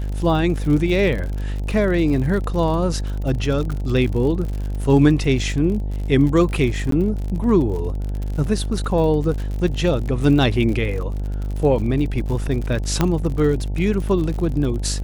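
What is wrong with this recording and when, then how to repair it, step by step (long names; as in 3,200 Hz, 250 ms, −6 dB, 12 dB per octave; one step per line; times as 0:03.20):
mains buzz 50 Hz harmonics 18 −24 dBFS
surface crackle 58 per second −27 dBFS
0:06.91–0:06.92: drop-out 13 ms
0:13.01: click −4 dBFS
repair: click removal
hum removal 50 Hz, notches 18
repair the gap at 0:06.91, 13 ms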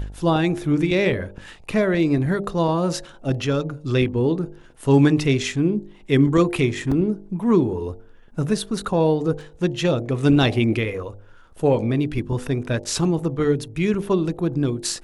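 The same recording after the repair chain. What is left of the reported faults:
none of them is left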